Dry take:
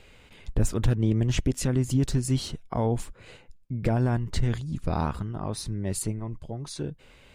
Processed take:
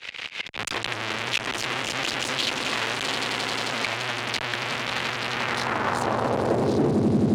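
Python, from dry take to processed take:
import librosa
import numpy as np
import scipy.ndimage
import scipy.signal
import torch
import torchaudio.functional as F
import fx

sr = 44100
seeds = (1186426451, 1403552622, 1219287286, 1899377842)

y = scipy.signal.sosfilt(scipy.signal.butter(2, 6700.0, 'lowpass', fs=sr, output='sos'), x)
y = fx.low_shelf(y, sr, hz=360.0, db=5.0)
y = fx.echo_swell(y, sr, ms=88, loudest=8, wet_db=-13)
y = fx.fuzz(y, sr, gain_db=42.0, gate_db=-49.0)
y = fx.auto_swell(y, sr, attack_ms=123.0)
y = fx.filter_sweep_bandpass(y, sr, from_hz=2800.0, to_hz=250.0, start_s=5.26, end_s=7.11, q=1.2)
y = fx.band_squash(y, sr, depth_pct=40)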